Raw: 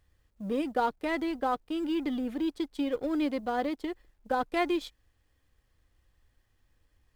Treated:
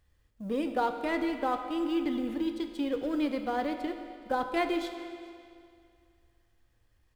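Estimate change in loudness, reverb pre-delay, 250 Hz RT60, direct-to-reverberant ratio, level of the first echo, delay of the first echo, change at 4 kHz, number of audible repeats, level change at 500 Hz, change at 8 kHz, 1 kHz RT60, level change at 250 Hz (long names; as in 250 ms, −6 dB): −0.5 dB, 18 ms, 2.3 s, 6.5 dB, −23.0 dB, 421 ms, 0.0 dB, 1, 0.0 dB, can't be measured, 2.3 s, 0.0 dB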